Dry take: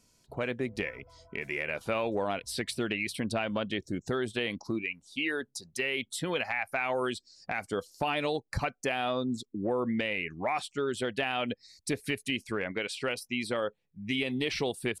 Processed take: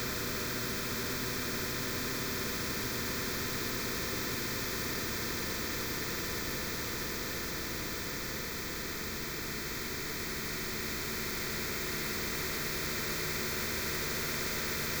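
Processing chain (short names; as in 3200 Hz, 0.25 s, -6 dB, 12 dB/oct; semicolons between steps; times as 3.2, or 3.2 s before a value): Schmitt trigger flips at -40.5 dBFS; fixed phaser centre 2900 Hz, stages 6; notch comb 560 Hz; Paulstretch 13×, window 1.00 s, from 0.47; spectral compressor 2:1; gain +4 dB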